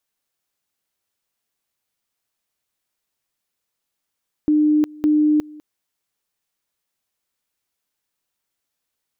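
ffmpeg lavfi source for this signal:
ffmpeg -f lavfi -i "aevalsrc='pow(10,(-12.5-23.5*gte(mod(t,0.56),0.36))/20)*sin(2*PI*302*t)':duration=1.12:sample_rate=44100" out.wav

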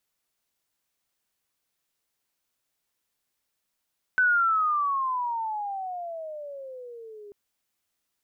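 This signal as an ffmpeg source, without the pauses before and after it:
ffmpeg -f lavfi -i "aevalsrc='pow(10,(-17.5-24*t/3.14)/20)*sin(2*PI*1520*3.14/(-23*log(2)/12)*(exp(-23*log(2)/12*t/3.14)-1))':duration=3.14:sample_rate=44100" out.wav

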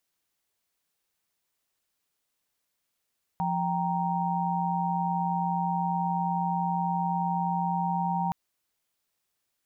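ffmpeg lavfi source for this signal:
ffmpeg -f lavfi -i "aevalsrc='0.0335*(sin(2*PI*174.61*t)+sin(2*PI*783.99*t)+sin(2*PI*932.33*t))':duration=4.92:sample_rate=44100" out.wav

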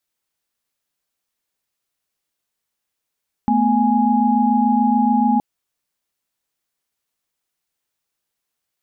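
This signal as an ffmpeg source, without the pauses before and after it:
ffmpeg -f lavfi -i "aevalsrc='0.133*(sin(2*PI*220*t)+sin(2*PI*246.94*t)+sin(2*PI*830.61*t))':duration=1.92:sample_rate=44100" out.wav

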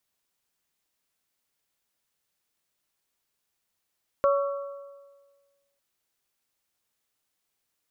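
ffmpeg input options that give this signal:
ffmpeg -f lavfi -i "aevalsrc='0.126*pow(10,-3*t/1.51)*sin(2*PI*561*t)+0.0668*pow(10,-3*t/1.227)*sin(2*PI*1122*t)+0.0355*pow(10,-3*t/1.161)*sin(2*PI*1346.4*t)':duration=1.55:sample_rate=44100" out.wav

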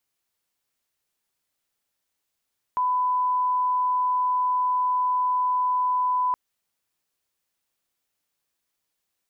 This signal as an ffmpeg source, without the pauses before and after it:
ffmpeg -f lavfi -i "sine=frequency=1000:duration=3.57:sample_rate=44100,volume=-1.94dB" out.wav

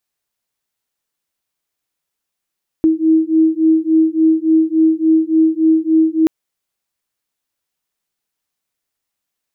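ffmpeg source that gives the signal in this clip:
ffmpeg -f lavfi -i "aevalsrc='0.224*(sin(2*PI*318*t)+sin(2*PI*321.5*t))':duration=3.43:sample_rate=44100" out.wav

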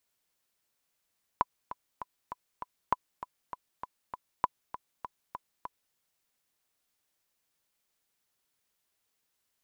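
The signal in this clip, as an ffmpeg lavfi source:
ffmpeg -f lavfi -i "aevalsrc='pow(10,(-11-13.5*gte(mod(t,5*60/198),60/198))/20)*sin(2*PI*997*mod(t,60/198))*exp(-6.91*mod(t,60/198)/0.03)':duration=4.54:sample_rate=44100" out.wav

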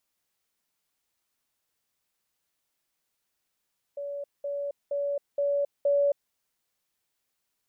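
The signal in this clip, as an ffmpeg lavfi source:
ffmpeg -f lavfi -i "aevalsrc='pow(10,(-32+3*floor(t/0.47))/20)*sin(2*PI*569*t)*clip(min(mod(t,0.47),0.27-mod(t,0.47))/0.005,0,1)':duration=2.35:sample_rate=44100" out.wav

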